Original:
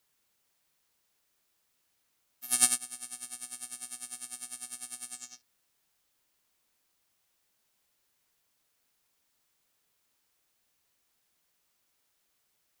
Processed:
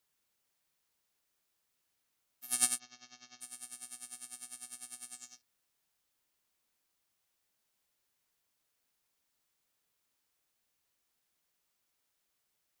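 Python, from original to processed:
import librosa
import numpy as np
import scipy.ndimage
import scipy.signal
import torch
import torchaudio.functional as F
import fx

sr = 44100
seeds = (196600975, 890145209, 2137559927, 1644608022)

y = fx.steep_lowpass(x, sr, hz=6500.0, slope=96, at=(2.78, 3.4), fade=0.02)
y = y * librosa.db_to_amplitude(-5.5)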